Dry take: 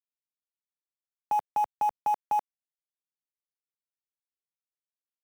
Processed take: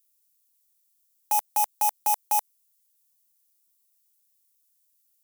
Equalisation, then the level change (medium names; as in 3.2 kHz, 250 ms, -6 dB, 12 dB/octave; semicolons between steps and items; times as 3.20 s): RIAA curve recording; peaking EQ 6.5 kHz +7.5 dB 3 oct; treble shelf 8.7 kHz +10 dB; 0.0 dB